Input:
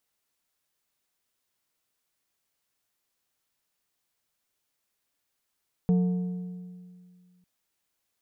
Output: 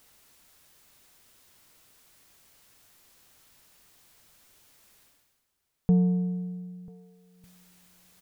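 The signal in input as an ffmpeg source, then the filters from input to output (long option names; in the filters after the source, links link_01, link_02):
-f lavfi -i "aevalsrc='0.126*pow(10,-3*t/2.14)*sin(2*PI*180*t)+0.0316*pow(10,-3*t/1.626)*sin(2*PI*450*t)+0.00794*pow(10,-3*t/1.412)*sin(2*PI*720*t)+0.002*pow(10,-3*t/1.32)*sin(2*PI*900*t)+0.000501*pow(10,-3*t/1.221)*sin(2*PI*1170*t)':duration=1.55:sample_rate=44100"
-filter_complex "[0:a]lowshelf=frequency=160:gain=6.5,areverse,acompressor=mode=upward:threshold=-43dB:ratio=2.5,areverse,asplit=2[link_01][link_02];[link_02]adelay=991.3,volume=-22dB,highshelf=frequency=4000:gain=-22.3[link_03];[link_01][link_03]amix=inputs=2:normalize=0"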